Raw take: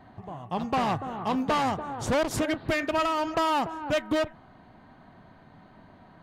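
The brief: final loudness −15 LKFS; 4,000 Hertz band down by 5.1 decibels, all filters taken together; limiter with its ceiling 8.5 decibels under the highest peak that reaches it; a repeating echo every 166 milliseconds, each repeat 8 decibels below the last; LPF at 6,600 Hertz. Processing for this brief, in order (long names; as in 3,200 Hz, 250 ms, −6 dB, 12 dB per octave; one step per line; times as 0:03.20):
low-pass filter 6,600 Hz
parametric band 4,000 Hz −7 dB
brickwall limiter −25.5 dBFS
repeating echo 166 ms, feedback 40%, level −8 dB
level +17.5 dB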